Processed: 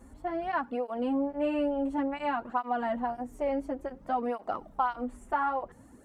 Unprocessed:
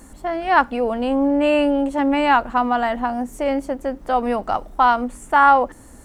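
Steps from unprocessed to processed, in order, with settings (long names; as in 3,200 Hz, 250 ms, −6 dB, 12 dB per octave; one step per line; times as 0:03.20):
high-shelf EQ 2,300 Hz −10.5 dB
downward compressor 5 to 1, threshold −18 dBFS, peak gain reduction 8 dB
through-zero flanger with one copy inverted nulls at 0.57 Hz, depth 6.8 ms
level −5 dB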